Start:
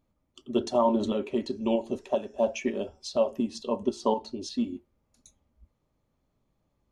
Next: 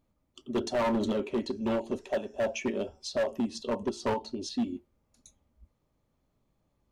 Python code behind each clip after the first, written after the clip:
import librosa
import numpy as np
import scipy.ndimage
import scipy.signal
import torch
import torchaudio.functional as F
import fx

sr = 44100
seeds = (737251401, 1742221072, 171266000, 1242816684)

y = np.clip(10.0 ** (24.0 / 20.0) * x, -1.0, 1.0) / 10.0 ** (24.0 / 20.0)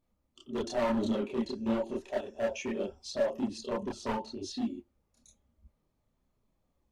y = fx.chorus_voices(x, sr, voices=4, hz=1.1, base_ms=29, depth_ms=3.0, mix_pct=55)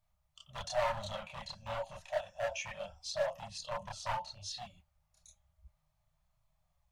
y = scipy.signal.sosfilt(scipy.signal.ellip(3, 1.0, 40, [160.0, 630.0], 'bandstop', fs=sr, output='sos'), x)
y = F.gain(torch.from_numpy(y), 1.0).numpy()